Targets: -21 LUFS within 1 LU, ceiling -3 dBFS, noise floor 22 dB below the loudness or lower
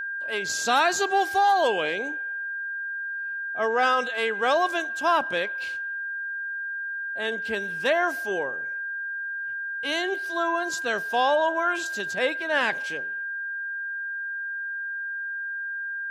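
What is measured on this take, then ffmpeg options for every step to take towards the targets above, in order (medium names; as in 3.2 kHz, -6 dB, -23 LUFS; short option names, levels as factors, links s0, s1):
steady tone 1.6 kHz; tone level -29 dBFS; loudness -26.0 LUFS; peak level -9.0 dBFS; loudness target -21.0 LUFS
-> -af "bandreject=f=1600:w=30"
-af "volume=1.78"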